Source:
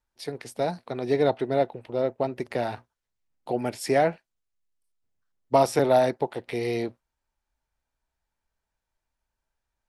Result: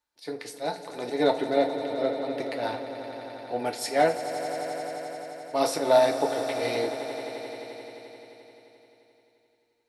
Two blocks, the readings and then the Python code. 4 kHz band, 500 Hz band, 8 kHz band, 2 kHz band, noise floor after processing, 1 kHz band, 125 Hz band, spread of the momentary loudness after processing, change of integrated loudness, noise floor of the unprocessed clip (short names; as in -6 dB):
+4.5 dB, -0.5 dB, +3.0 dB, +1.5 dB, -69 dBFS, 0.0 dB, -9.5 dB, 15 LU, -2.0 dB, -85 dBFS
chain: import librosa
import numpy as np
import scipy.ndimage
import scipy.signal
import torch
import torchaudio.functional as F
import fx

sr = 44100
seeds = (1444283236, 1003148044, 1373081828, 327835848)

p1 = fx.peak_eq(x, sr, hz=4100.0, db=6.0, octaves=0.33)
p2 = fx.auto_swell(p1, sr, attack_ms=106.0)
p3 = fx.highpass(p2, sr, hz=340.0, slope=6)
p4 = p3 + fx.echo_swell(p3, sr, ms=87, loudest=5, wet_db=-14.5, dry=0)
y = fx.rev_fdn(p4, sr, rt60_s=0.3, lf_ratio=0.75, hf_ratio=0.95, size_ms=20.0, drr_db=3.5)